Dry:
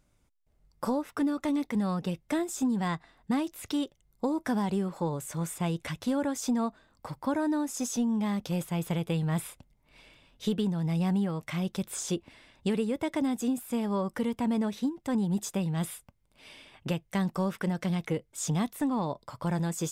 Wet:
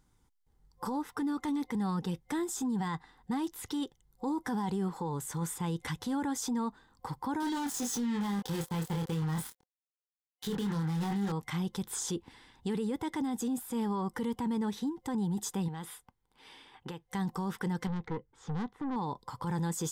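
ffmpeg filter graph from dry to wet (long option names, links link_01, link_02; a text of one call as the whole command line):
ffmpeg -i in.wav -filter_complex "[0:a]asettb=1/sr,asplit=3[link_01][link_02][link_03];[link_01]atrim=end=7.404[link_04];[link_02]atrim=start=7.4:end=11.32,asetpts=PTS-STARTPTS,afade=type=in:duration=0.004:curve=qsin,afade=type=out:start_time=3.916:duration=0.004:curve=qsin,acrusher=bits=5:mix=0:aa=0.5,asplit=2[link_05][link_06];[link_06]adelay=25,volume=-5dB[link_07];[link_05][link_07]amix=inputs=2:normalize=0,atrim=end_sample=172872[link_08];[link_03]atrim=start=11.316[link_09];[link_04][link_08]acrossfade=duration=0.004:curve1=hsin:curve2=qsin[link_10];[link_10][link_09]acrossfade=duration=0.004:curve1=qsin:curve2=hsin,asettb=1/sr,asplit=3[link_11][link_12][link_13];[link_11]atrim=end=15.684[link_14];[link_12]atrim=start=15.68:end=17.11,asetpts=PTS-STARTPTS,afade=type=in:duration=0.004:curve=qsin,afade=type=out:start_time=1.426:duration=0.004:curve=qsin,bass=frequency=250:gain=-8,treble=frequency=4000:gain=-6,acompressor=threshold=-37dB:ratio=3:attack=3.2:release=140:knee=1:detection=peak[link_15];[link_13]atrim=start=17.106[link_16];[link_14][link_15]acrossfade=duration=0.004:curve1=hsin:curve2=qsin[link_17];[link_17][link_16]acrossfade=duration=0.004:curve1=qsin:curve2=hsin,asettb=1/sr,asplit=3[link_18][link_19][link_20];[link_18]atrim=end=17.874[link_21];[link_19]atrim=start=17.87:end=18.96,asetpts=PTS-STARTPTS,afade=type=in:duration=0.004:curve=qsin,afade=type=out:start_time=1.086:duration=0.004:curve=qsin,lowpass=1900,aeval=exprs='(tanh(39.8*val(0)+0.4)-tanh(0.4))/39.8':channel_layout=same[link_22];[link_20]atrim=start=18.956[link_23];[link_21][link_22]acrossfade=duration=0.004:curve1=hsin:curve2=qsin[link_24];[link_24][link_23]acrossfade=duration=0.004:curve1=qsin:curve2=hsin,superequalizer=8b=0.251:9b=1.58:12b=0.501,alimiter=level_in=2.5dB:limit=-24dB:level=0:latency=1:release=13,volume=-2.5dB" out.wav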